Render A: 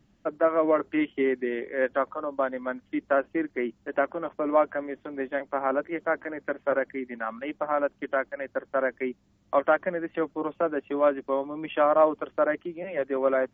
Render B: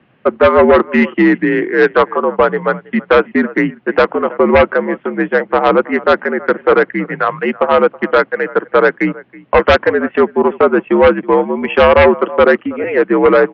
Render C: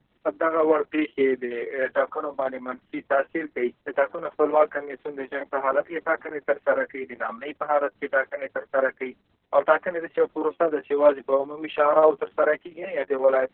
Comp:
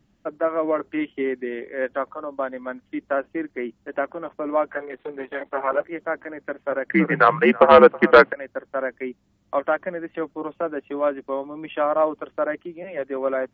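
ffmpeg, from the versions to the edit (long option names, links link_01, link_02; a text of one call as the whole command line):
ffmpeg -i take0.wav -i take1.wav -i take2.wav -filter_complex "[0:a]asplit=3[link_01][link_02][link_03];[link_01]atrim=end=4.712[link_04];[2:a]atrim=start=4.708:end=5.842[link_05];[link_02]atrim=start=5.838:end=6.902[link_06];[1:a]atrim=start=6.898:end=8.332[link_07];[link_03]atrim=start=8.328[link_08];[link_04][link_05]acrossfade=duration=0.004:curve1=hsin:curve2=hsin[link_09];[link_09][link_06]acrossfade=duration=0.004:curve1=hsin:curve2=hsin[link_10];[link_10][link_07]acrossfade=duration=0.004:curve1=hsin:curve2=hsin[link_11];[link_11][link_08]acrossfade=duration=0.004:curve1=hsin:curve2=hsin" out.wav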